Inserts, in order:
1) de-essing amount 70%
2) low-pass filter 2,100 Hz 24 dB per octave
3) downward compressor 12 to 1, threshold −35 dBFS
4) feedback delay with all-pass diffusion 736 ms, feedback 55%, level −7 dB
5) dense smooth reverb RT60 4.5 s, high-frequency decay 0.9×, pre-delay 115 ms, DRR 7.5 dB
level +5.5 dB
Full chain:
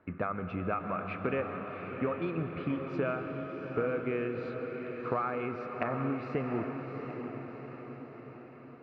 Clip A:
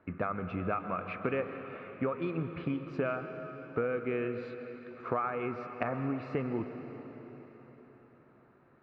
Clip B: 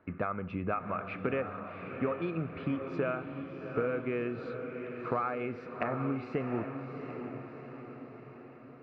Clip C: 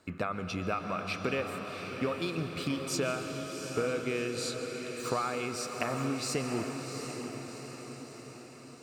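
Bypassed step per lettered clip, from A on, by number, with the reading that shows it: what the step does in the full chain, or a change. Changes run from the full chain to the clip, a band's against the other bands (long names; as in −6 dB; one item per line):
4, echo-to-direct ratio −3.0 dB to −7.5 dB
5, echo-to-direct ratio −3.0 dB to −5.5 dB
2, 2 kHz band +3.0 dB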